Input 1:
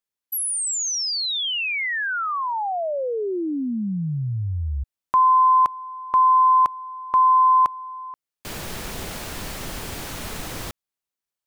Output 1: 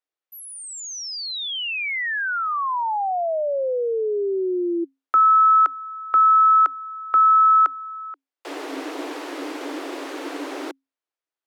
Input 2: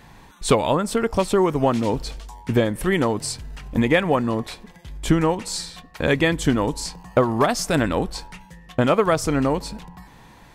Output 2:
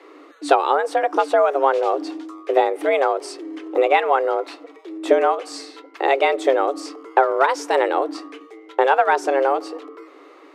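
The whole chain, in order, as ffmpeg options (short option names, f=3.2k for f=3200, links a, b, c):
-af "afreqshift=270,aemphasis=mode=reproduction:type=75fm,volume=1.5dB"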